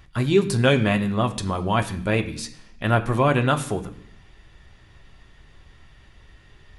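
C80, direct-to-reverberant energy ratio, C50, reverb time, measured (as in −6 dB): 16.5 dB, 5.0 dB, 14.0 dB, 0.65 s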